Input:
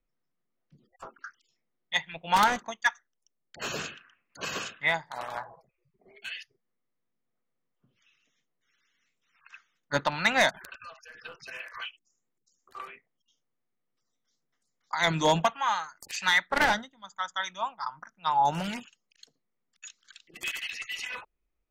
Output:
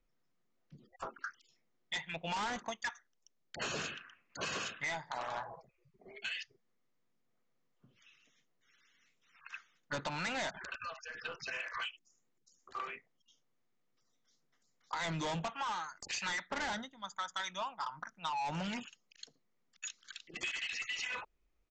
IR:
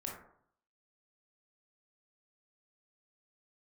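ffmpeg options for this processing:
-af "aresample=16000,asoftclip=type=tanh:threshold=-29dB,aresample=44100,acompressor=threshold=-39dB:ratio=6,volume=3dB"

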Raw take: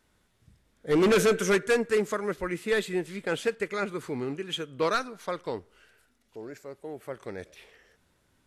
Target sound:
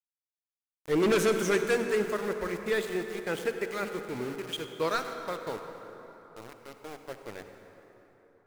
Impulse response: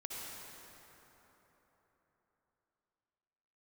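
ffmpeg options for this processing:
-filter_complex "[0:a]aeval=exprs='val(0)*gte(abs(val(0)),0.0158)':c=same,bandreject=f=47.58:t=h:w=4,bandreject=f=95.16:t=h:w=4,bandreject=f=142.74:t=h:w=4,bandreject=f=190.32:t=h:w=4,bandreject=f=237.9:t=h:w=4,bandreject=f=285.48:t=h:w=4,asplit=2[a][b];[1:a]atrim=start_sample=2205[c];[b][c]afir=irnorm=-1:irlink=0,volume=-2.5dB[d];[a][d]amix=inputs=2:normalize=0,volume=-6dB"

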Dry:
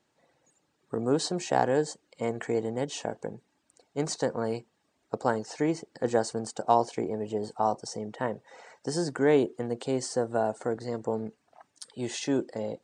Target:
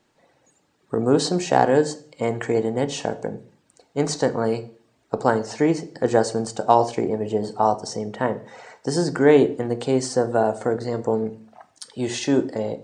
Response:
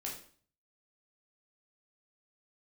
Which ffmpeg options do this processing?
-filter_complex "[0:a]asplit=2[a][b];[1:a]atrim=start_sample=2205,lowpass=6.2k,lowshelf=f=110:g=11[c];[b][c]afir=irnorm=-1:irlink=0,volume=-7.5dB[d];[a][d]amix=inputs=2:normalize=0,volume=5.5dB"

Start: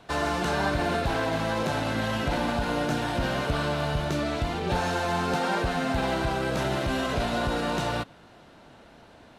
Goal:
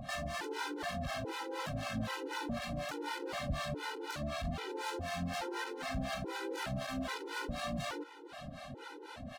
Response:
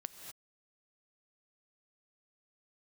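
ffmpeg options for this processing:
-filter_complex "[0:a]acompressor=mode=upward:threshold=-30dB:ratio=2.5,asoftclip=type=hard:threshold=-30.5dB,acrossover=split=620[a][b];[a]aeval=exprs='val(0)*(1-1/2+1/2*cos(2*PI*4*n/s))':c=same[c];[b]aeval=exprs='val(0)*(1-1/2-1/2*cos(2*PI*4*n/s))':c=same[d];[c][d]amix=inputs=2:normalize=0,asplit=2[e][f];[f]adelay=485,lowpass=f=4k:p=1,volume=-15.5dB,asplit=2[g][h];[h]adelay=485,lowpass=f=4k:p=1,volume=0.44,asplit=2[i][j];[j]adelay=485,lowpass=f=4k:p=1,volume=0.44,asplit=2[k][l];[l]adelay=485,lowpass=f=4k:p=1,volume=0.44[m];[e][g][i][k][m]amix=inputs=5:normalize=0,afftfilt=real='re*gt(sin(2*PI*1.2*pts/sr)*(1-2*mod(floor(b*sr/1024/260),2)),0)':imag='im*gt(sin(2*PI*1.2*pts/sr)*(1-2*mod(floor(b*sr/1024/260),2)),0)':win_size=1024:overlap=0.75,volume=1.5dB"

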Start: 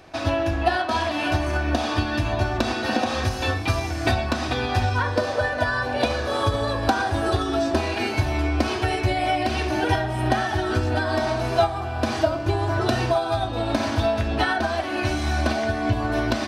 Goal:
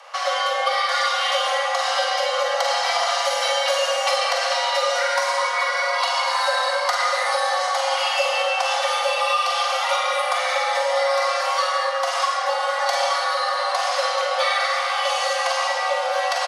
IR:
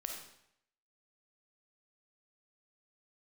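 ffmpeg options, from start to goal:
-filter_complex "[0:a]asettb=1/sr,asplit=3[a][b][c];[a]atrim=end=4.894[d];[b]atrim=start=4.89:end=5.31,asetpts=PTS-STARTPTS,afade=t=in:d=0.004:c=qsin,afade=t=out:st=0.416:d=0.004:c=qsin,highshelf=f=8.6k:g=11.5[e];[c]atrim=start=5.306[f];[d][e]acrossfade=d=0.004:c1=hsin:c2=qsin[g];[g][f]acrossfade=d=0.004:c1=qsin:c2=hsin,aecho=1:1:595:0.2,afreqshift=460,aecho=1:1:42|52:0.422|0.398[h];[1:a]atrim=start_sample=2205,asetrate=22050,aresample=44100[i];[h][i]afir=irnorm=-1:irlink=0,acrossover=split=340|3000[j][k][l];[k]acompressor=threshold=-27dB:ratio=2.5[m];[j][m][l]amix=inputs=3:normalize=0,volume=3dB"

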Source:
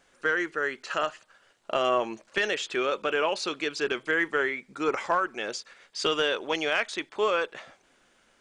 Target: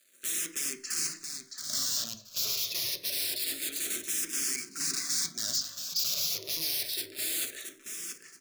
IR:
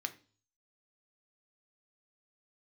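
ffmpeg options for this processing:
-filter_complex "[0:a]aeval=exprs='(mod(28.2*val(0)+1,2)-1)/28.2':c=same,equalizer=f=1k:t=o:w=1.1:g=-9.5,acrusher=bits=9:mix=0:aa=0.000001,asuperstop=centerf=840:order=8:qfactor=4.3,highshelf=f=3.6k:t=q:w=1.5:g=8,aecho=1:1:675|1350|2025:0.422|0.0928|0.0204[a];[1:a]atrim=start_sample=2205[b];[a][b]afir=irnorm=-1:irlink=0,asplit=2[c][d];[d]afreqshift=-0.27[e];[c][e]amix=inputs=2:normalize=1"

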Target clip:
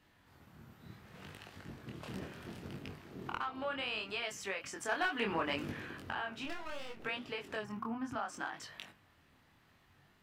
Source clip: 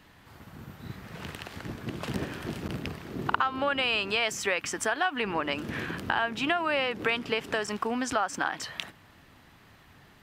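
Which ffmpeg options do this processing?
-filter_complex "[0:a]asettb=1/sr,asplit=3[a][b][c];[a]atrim=end=4.894[d];[b]atrim=start=4.89:end=5.72,asetpts=PTS-STARTPTS,afade=t=in:d=0.004:c=qsin,afade=t=out:st=0.826:d=0.004:c=qsin,acontrast=69[e];[c]atrim=start=5.716[f];[d][e]acrossfade=d=0.004:c1=hsin:c2=qsin[g];[g][f]acrossfade=d=0.004:c1=qsin:c2=hsin,asplit=3[h][i][j];[h]afade=t=out:st=7.61:d=0.02[k];[i]equalizer=f=125:t=o:w=1:g=9,equalizer=f=250:t=o:w=1:g=5,equalizer=f=500:t=o:w=1:g=-10,equalizer=f=1k:t=o:w=1:g=6,equalizer=f=2k:t=o:w=1:g=-5,equalizer=f=4k:t=o:w=1:g=-11,equalizer=f=8k:t=o:w=1:g=-12,afade=t=in:st=7.61:d=0.02,afade=t=out:st=8.15:d=0.02[l];[j]afade=t=in:st=8.15:d=0.02[m];[k][l][m]amix=inputs=3:normalize=0,aeval=exprs='clip(val(0),-1,0.158)':c=same,flanger=delay=7.8:depth=4.9:regen=-83:speed=1.5:shape=sinusoidal,asplit=3[n][o][p];[n]afade=t=out:st=6.44:d=0.02[q];[o]aeval=exprs='max(val(0),0)':c=same,afade=t=in:st=6.44:d=0.02,afade=t=out:st=7.04:d=0.02[r];[p]afade=t=in:st=7.04:d=0.02[s];[q][r][s]amix=inputs=3:normalize=0,flanger=delay=20:depth=6.4:speed=0.69,volume=-4dB"

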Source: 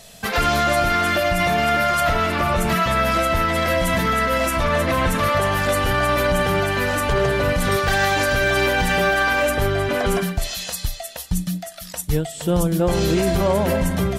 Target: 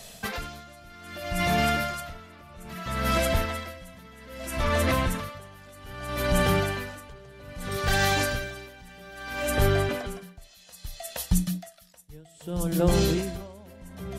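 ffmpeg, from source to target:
-filter_complex "[0:a]bandreject=f=164.8:t=h:w=4,bandreject=f=329.6:t=h:w=4,bandreject=f=494.4:t=h:w=4,bandreject=f=659.2:t=h:w=4,bandreject=f=824:t=h:w=4,bandreject=f=988.8:t=h:w=4,bandreject=f=1.1536k:t=h:w=4,bandreject=f=1.3184k:t=h:w=4,bandreject=f=1.4832k:t=h:w=4,bandreject=f=1.648k:t=h:w=4,bandreject=f=1.8128k:t=h:w=4,bandreject=f=1.9776k:t=h:w=4,bandreject=f=2.1424k:t=h:w=4,bandreject=f=2.3072k:t=h:w=4,bandreject=f=2.472k:t=h:w=4,bandreject=f=2.6368k:t=h:w=4,bandreject=f=2.8016k:t=h:w=4,bandreject=f=2.9664k:t=h:w=4,bandreject=f=3.1312k:t=h:w=4,bandreject=f=3.296k:t=h:w=4,bandreject=f=3.4608k:t=h:w=4,bandreject=f=3.6256k:t=h:w=4,bandreject=f=3.7904k:t=h:w=4,bandreject=f=3.9552k:t=h:w=4,bandreject=f=4.12k:t=h:w=4,bandreject=f=4.2848k:t=h:w=4,bandreject=f=4.4496k:t=h:w=4,bandreject=f=4.6144k:t=h:w=4,bandreject=f=4.7792k:t=h:w=4,bandreject=f=4.944k:t=h:w=4,bandreject=f=5.1088k:t=h:w=4,bandreject=f=5.2736k:t=h:w=4,bandreject=f=5.4384k:t=h:w=4,bandreject=f=5.6032k:t=h:w=4,bandreject=f=5.768k:t=h:w=4,bandreject=f=5.9328k:t=h:w=4,bandreject=f=6.0976k:t=h:w=4,bandreject=f=6.2624k:t=h:w=4,acrossover=split=290|3000[a][b][c];[b]acompressor=threshold=-23dB:ratio=6[d];[a][d][c]amix=inputs=3:normalize=0,aeval=exprs='val(0)*pow(10,-26*(0.5-0.5*cos(2*PI*0.62*n/s))/20)':c=same"

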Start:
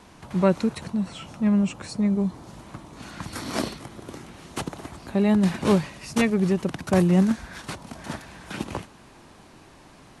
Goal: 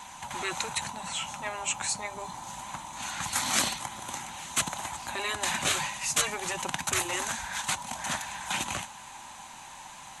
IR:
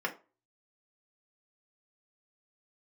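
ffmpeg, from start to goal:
-af "superequalizer=6b=0.501:7b=0.355:9b=3.16:14b=0.562:15b=1.78,flanger=delay=0:depth=6.3:regen=-80:speed=0.24:shape=sinusoidal,tiltshelf=f=970:g=-8.5,afftfilt=real='re*lt(hypot(re,im),0.1)':imag='im*lt(hypot(re,im),0.1)':win_size=1024:overlap=0.75,volume=5.5dB"

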